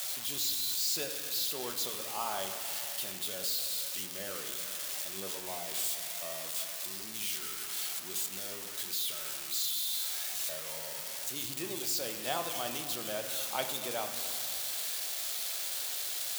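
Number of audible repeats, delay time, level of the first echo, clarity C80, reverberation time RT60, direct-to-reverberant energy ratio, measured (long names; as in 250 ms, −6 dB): no echo audible, no echo audible, no echo audible, 8.5 dB, 2.2 s, 5.0 dB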